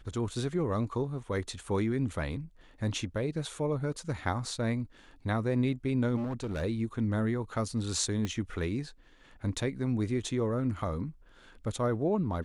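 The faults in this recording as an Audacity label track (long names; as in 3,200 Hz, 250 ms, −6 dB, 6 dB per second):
6.160000	6.630000	clipping −30.5 dBFS
8.250000	8.250000	click −20 dBFS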